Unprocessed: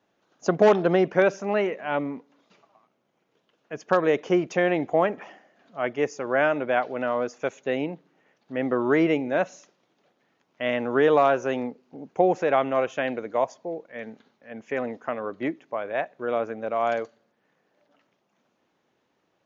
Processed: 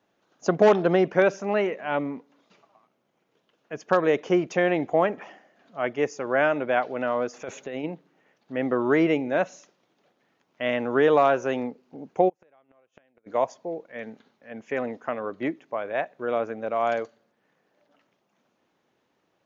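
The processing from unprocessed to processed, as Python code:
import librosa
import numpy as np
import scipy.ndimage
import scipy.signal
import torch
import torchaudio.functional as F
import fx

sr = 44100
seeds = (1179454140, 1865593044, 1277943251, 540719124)

y = fx.over_compress(x, sr, threshold_db=-33.0, ratio=-1.0, at=(7.33, 7.83), fade=0.02)
y = fx.gate_flip(y, sr, shuts_db=-20.0, range_db=-39, at=(12.28, 13.26), fade=0.02)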